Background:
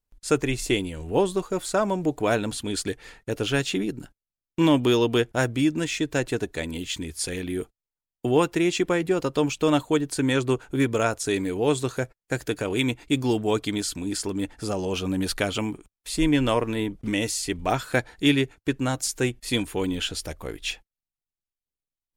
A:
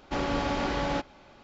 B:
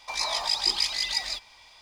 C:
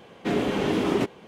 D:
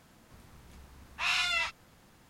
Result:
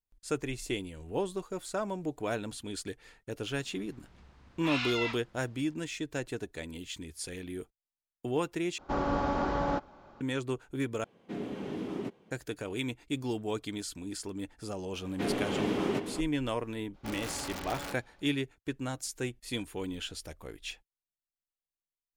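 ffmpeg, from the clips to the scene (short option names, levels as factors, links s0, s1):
-filter_complex "[1:a]asplit=2[s0][s1];[3:a]asplit=2[s2][s3];[0:a]volume=0.299[s4];[4:a]lowpass=4600[s5];[s0]highshelf=f=1700:t=q:w=1.5:g=-8[s6];[s2]equalizer=f=210:t=o:w=2.4:g=7[s7];[s3]asplit=2[s8][s9];[s9]adelay=367.3,volume=0.398,highshelf=f=4000:g=-8.27[s10];[s8][s10]amix=inputs=2:normalize=0[s11];[s1]aeval=exprs='(mod(11.9*val(0)+1,2)-1)/11.9':c=same[s12];[s4]asplit=3[s13][s14][s15];[s13]atrim=end=8.784[s16];[s6]atrim=end=1.43,asetpts=PTS-STARTPTS,volume=0.841[s17];[s14]atrim=start=10.206:end=11.044[s18];[s7]atrim=end=1.27,asetpts=PTS-STARTPTS,volume=0.126[s19];[s15]atrim=start=12.306[s20];[s5]atrim=end=2.29,asetpts=PTS-STARTPTS,volume=0.631,afade=t=in:d=0.004:c=hsin,afade=t=out:st=2.286:d=0.004:c=hsin,adelay=152145S[s21];[s11]atrim=end=1.27,asetpts=PTS-STARTPTS,volume=0.447,afade=t=in:d=0.004:c=hsin,afade=t=out:st=1.266:d=0.004:c=hsin,adelay=14940[s22];[s12]atrim=end=1.43,asetpts=PTS-STARTPTS,volume=0.266,afade=t=in:d=0.02,afade=t=out:st=1.41:d=0.02,adelay=16930[s23];[s16][s17]acrossfade=d=0.004:c1=hsin:c2=hsin[s24];[s24][s18]acrossfade=d=0.004:c1=hsin:c2=hsin[s25];[s25][s19]acrossfade=d=0.004:c1=hsin:c2=hsin[s26];[s26][s20]acrossfade=d=0.004:c1=hsin:c2=hsin[s27];[s27][s21][s22][s23]amix=inputs=4:normalize=0"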